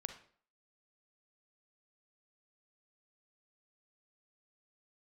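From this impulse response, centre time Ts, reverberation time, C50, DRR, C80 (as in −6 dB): 13 ms, 0.50 s, 8.5 dB, 7.0 dB, 13.5 dB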